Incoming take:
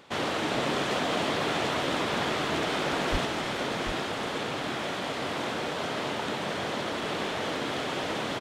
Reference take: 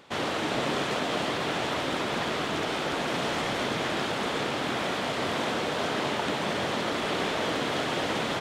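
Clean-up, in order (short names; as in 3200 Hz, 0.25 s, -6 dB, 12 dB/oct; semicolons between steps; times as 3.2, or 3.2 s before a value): 3.11–3.23 HPF 140 Hz 24 dB/oct; inverse comb 0.741 s -7 dB; 3.25 gain correction +3.5 dB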